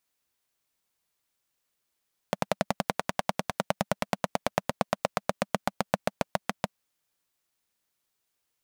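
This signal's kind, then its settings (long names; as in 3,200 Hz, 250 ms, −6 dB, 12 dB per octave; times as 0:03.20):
pulse-train model of a single-cylinder engine, changing speed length 4.45 s, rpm 1,300, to 800, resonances 200/600 Hz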